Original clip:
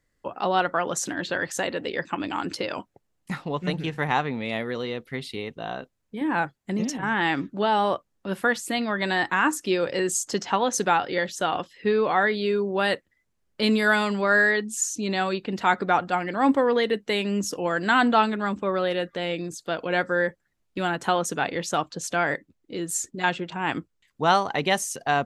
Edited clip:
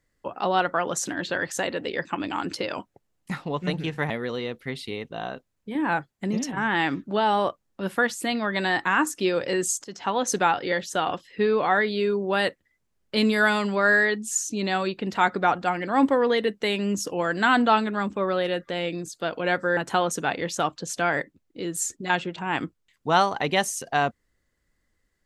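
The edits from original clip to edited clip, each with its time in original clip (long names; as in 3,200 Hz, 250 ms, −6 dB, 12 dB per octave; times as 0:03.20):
0:04.10–0:04.56: remove
0:10.30–0:10.83: fade in equal-power, from −21 dB
0:20.23–0:20.91: remove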